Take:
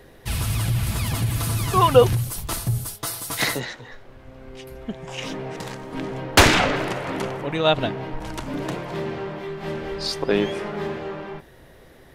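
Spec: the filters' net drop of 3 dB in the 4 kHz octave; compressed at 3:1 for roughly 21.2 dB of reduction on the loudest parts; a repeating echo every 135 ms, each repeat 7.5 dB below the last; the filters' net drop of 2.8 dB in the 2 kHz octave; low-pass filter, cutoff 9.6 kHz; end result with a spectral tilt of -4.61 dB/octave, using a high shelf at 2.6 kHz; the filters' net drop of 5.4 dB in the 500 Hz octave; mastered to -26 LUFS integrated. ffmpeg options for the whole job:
-af "lowpass=9600,equalizer=f=500:t=o:g=-6.5,equalizer=f=2000:t=o:g=-4,highshelf=f=2600:g=6.5,equalizer=f=4000:t=o:g=-8,acompressor=threshold=0.00891:ratio=3,aecho=1:1:135|270|405|540|675:0.422|0.177|0.0744|0.0312|0.0131,volume=4.73"

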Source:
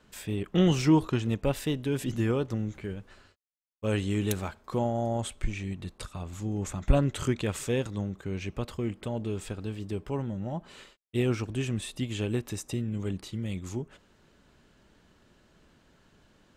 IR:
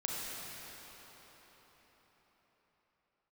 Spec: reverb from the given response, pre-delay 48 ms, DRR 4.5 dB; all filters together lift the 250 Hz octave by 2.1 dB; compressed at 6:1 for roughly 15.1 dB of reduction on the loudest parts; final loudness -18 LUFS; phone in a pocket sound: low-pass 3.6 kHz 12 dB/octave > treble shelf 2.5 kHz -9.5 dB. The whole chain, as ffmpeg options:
-filter_complex "[0:a]equalizer=f=250:t=o:g=3,acompressor=threshold=0.0251:ratio=6,asplit=2[s0][s1];[1:a]atrim=start_sample=2205,adelay=48[s2];[s1][s2]afir=irnorm=-1:irlink=0,volume=0.376[s3];[s0][s3]amix=inputs=2:normalize=0,lowpass=3600,highshelf=f=2500:g=-9.5,volume=8.91"

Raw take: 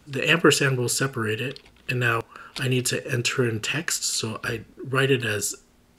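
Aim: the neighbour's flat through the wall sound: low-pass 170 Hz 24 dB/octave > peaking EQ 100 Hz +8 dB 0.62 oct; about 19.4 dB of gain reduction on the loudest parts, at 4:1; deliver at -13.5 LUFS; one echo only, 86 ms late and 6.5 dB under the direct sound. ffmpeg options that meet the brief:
-af "acompressor=threshold=0.0158:ratio=4,lowpass=f=170:w=0.5412,lowpass=f=170:w=1.3066,equalizer=f=100:t=o:w=0.62:g=8,aecho=1:1:86:0.473,volume=23.7"

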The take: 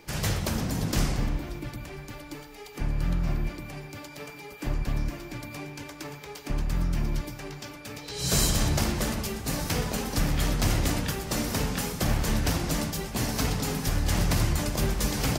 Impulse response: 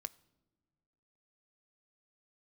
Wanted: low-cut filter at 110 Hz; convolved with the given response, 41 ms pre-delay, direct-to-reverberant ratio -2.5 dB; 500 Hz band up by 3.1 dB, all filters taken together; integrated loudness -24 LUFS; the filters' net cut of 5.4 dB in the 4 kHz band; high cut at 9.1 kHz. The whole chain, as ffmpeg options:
-filter_complex "[0:a]highpass=110,lowpass=9100,equalizer=f=500:t=o:g=4,equalizer=f=4000:t=o:g=-7,asplit=2[s0][s1];[1:a]atrim=start_sample=2205,adelay=41[s2];[s1][s2]afir=irnorm=-1:irlink=0,volume=2[s3];[s0][s3]amix=inputs=2:normalize=0,volume=1.33"

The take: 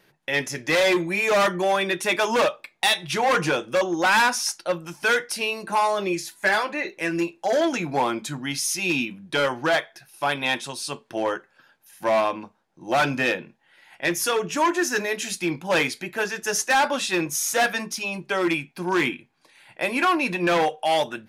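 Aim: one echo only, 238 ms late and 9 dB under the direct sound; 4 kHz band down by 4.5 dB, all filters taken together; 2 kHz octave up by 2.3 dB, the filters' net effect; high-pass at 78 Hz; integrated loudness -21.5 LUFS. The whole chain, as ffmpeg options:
-af "highpass=78,equalizer=f=2000:t=o:g=5,equalizer=f=4000:t=o:g=-8,aecho=1:1:238:0.355,volume=1.12"

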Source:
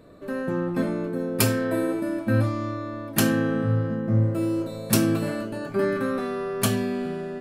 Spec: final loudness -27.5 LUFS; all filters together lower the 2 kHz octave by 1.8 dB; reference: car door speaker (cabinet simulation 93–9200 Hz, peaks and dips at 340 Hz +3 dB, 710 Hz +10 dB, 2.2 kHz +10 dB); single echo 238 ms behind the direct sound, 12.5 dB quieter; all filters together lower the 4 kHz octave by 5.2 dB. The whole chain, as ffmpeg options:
-af "highpass=93,equalizer=f=340:t=q:w=4:g=3,equalizer=f=710:t=q:w=4:g=10,equalizer=f=2200:t=q:w=4:g=10,lowpass=f=9200:w=0.5412,lowpass=f=9200:w=1.3066,equalizer=f=2000:t=o:g=-5,equalizer=f=4000:t=o:g=-6.5,aecho=1:1:238:0.237,volume=0.708"

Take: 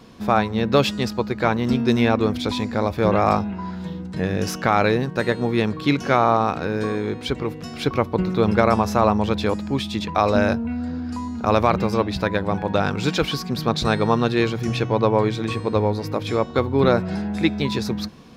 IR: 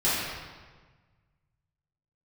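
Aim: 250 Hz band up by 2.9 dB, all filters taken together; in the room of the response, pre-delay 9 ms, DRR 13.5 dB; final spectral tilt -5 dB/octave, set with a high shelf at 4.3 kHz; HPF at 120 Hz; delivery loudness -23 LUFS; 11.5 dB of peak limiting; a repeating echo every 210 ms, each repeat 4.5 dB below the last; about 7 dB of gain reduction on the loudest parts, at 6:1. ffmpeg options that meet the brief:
-filter_complex "[0:a]highpass=120,equalizer=f=250:t=o:g=4,highshelf=f=4300:g=3.5,acompressor=threshold=0.126:ratio=6,alimiter=limit=0.141:level=0:latency=1,aecho=1:1:210|420|630|840|1050|1260|1470|1680|1890:0.596|0.357|0.214|0.129|0.0772|0.0463|0.0278|0.0167|0.01,asplit=2[s0][s1];[1:a]atrim=start_sample=2205,adelay=9[s2];[s1][s2]afir=irnorm=-1:irlink=0,volume=0.0422[s3];[s0][s3]amix=inputs=2:normalize=0,volume=1.26"

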